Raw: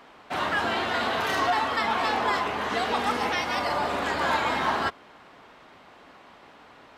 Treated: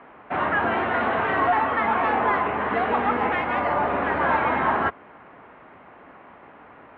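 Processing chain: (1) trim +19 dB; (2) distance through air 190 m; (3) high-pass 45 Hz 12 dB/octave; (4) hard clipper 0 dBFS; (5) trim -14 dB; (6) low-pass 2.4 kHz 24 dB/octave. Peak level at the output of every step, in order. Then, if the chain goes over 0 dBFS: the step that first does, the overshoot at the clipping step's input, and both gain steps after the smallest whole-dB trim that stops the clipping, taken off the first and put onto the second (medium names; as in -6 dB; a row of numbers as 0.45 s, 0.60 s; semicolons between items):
+6.0 dBFS, +4.5 dBFS, +4.5 dBFS, 0.0 dBFS, -14.0 dBFS, -13.0 dBFS; step 1, 4.5 dB; step 1 +14 dB, step 5 -9 dB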